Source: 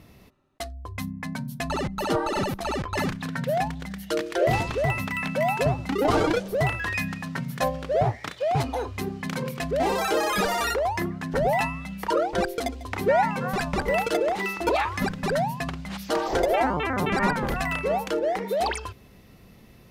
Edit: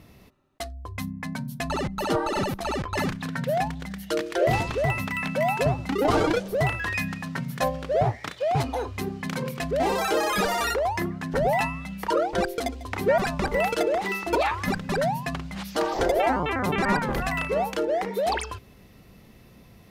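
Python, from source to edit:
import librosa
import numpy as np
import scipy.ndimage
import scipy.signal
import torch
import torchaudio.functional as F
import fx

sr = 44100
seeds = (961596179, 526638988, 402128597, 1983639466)

y = fx.edit(x, sr, fx.cut(start_s=13.18, length_s=0.34), tone=tone)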